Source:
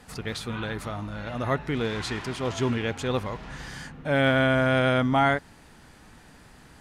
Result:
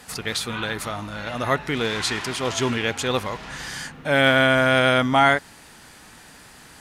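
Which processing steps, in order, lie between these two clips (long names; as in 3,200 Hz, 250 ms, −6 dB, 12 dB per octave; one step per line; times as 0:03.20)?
spectral tilt +2 dB per octave
level +5.5 dB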